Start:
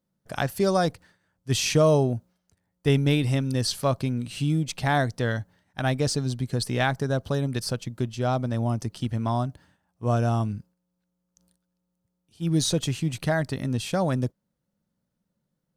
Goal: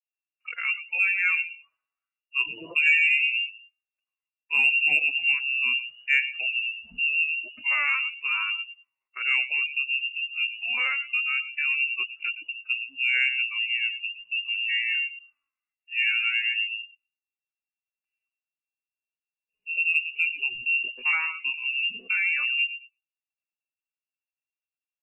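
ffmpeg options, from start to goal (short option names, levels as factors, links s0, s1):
-filter_complex "[0:a]acrossover=split=110|1000[s0][s1][s2];[s2]alimiter=limit=0.0944:level=0:latency=1:release=255[s3];[s0][s1][s3]amix=inputs=3:normalize=0,lowpass=f=2500:t=q:w=0.5098,lowpass=f=2500:t=q:w=0.6013,lowpass=f=2500:t=q:w=0.9,lowpass=f=2500:t=q:w=2.563,afreqshift=-2900,asplit=2[s4][s5];[s5]aecho=0:1:71|142|213:0.251|0.0603|0.0145[s6];[s4][s6]amix=inputs=2:normalize=0,flanger=delay=3.2:depth=4.8:regen=0:speed=0.42:shape=sinusoidal,atempo=0.63,adynamicequalizer=threshold=0.00562:dfrequency=910:dqfactor=1.1:tfrequency=910:tqfactor=1.1:attack=5:release=100:ratio=0.375:range=2:mode=cutabove:tftype=bell,afftdn=nr=20:nf=-40,acontrast=28,volume=0.668"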